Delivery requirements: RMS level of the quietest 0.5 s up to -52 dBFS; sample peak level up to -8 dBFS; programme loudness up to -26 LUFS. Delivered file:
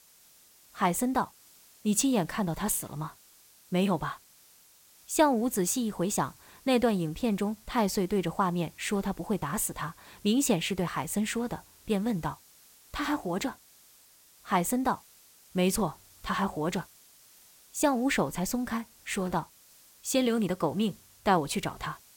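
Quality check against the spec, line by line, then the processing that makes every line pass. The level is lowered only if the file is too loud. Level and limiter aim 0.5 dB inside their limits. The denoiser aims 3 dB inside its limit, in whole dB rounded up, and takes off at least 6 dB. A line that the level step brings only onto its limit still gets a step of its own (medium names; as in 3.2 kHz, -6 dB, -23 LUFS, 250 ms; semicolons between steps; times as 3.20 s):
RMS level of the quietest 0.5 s -59 dBFS: pass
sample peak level -10.5 dBFS: pass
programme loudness -30.0 LUFS: pass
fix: none needed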